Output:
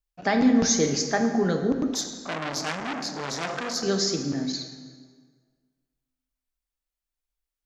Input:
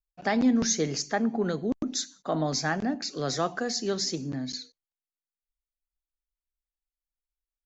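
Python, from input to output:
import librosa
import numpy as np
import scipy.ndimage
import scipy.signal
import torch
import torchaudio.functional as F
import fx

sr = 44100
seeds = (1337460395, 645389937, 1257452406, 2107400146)

y = fx.rev_plate(x, sr, seeds[0], rt60_s=1.7, hf_ratio=0.7, predelay_ms=0, drr_db=4.5)
y = fx.transformer_sat(y, sr, knee_hz=3600.0, at=(1.94, 3.83))
y = y * librosa.db_to_amplitude(3.0)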